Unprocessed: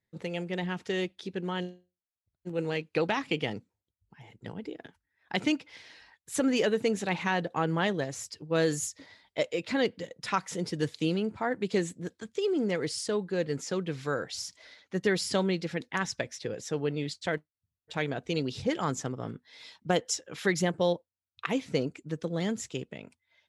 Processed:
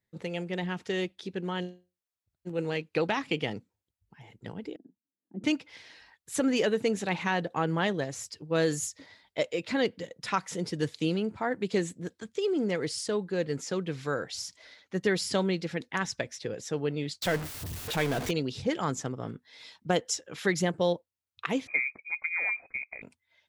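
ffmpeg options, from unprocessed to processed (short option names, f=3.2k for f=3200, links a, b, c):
-filter_complex "[0:a]asettb=1/sr,asplit=3[a][b][c];[a]atrim=end=4.764[d];[b]atrim=start=4.76:end=5.44,asetpts=PTS-STARTPTS,afade=t=in:d=0.004:c=qsin,afade=t=out:st=0.676:d=0.004:c=qsin,asuperpass=centerf=250:order=4:qfactor=1.9[e];[c]atrim=start=5.436[f];[d][e]acrossfade=d=0.004:c1=hsin:c2=qsin[g];[g][f]acrossfade=d=0.004:c1=qsin:c2=hsin,asettb=1/sr,asplit=3[h][i][j];[h]atrim=end=17.224[k];[i]atrim=start=17.22:end=18.31,asetpts=PTS-STARTPTS,afade=t=in:d=0.004:c=qsin,afade=t=out:st=1.086:d=0.004:c=qsin,aeval=exprs='val(0)+0.5*0.0335*sgn(val(0))':c=same[l];[j]atrim=start=18.306[m];[k][l]acrossfade=d=0.004:c1=hsin:c2=qsin[n];[n][m]acrossfade=d=0.004:c1=qsin:c2=hsin,asettb=1/sr,asplit=3[o][p][q];[o]atrim=end=21.674[r];[p]atrim=start=21.67:end=23.02,asetpts=PTS-STARTPTS,afade=t=in:d=0.004:c=qsin,afade=t=out:st=1.346:d=0.004:c=qsin,lowpass=f=2.2k:t=q:w=0.5098,lowpass=f=2.2k:t=q:w=0.6013,lowpass=f=2.2k:t=q:w=0.9,lowpass=f=2.2k:t=q:w=2.563,afreqshift=-2600[s];[q]atrim=start=23.016[t];[r][s]acrossfade=d=0.004:c1=hsin:c2=qsin[u];[u][t]acrossfade=d=0.004:c1=qsin:c2=hsin"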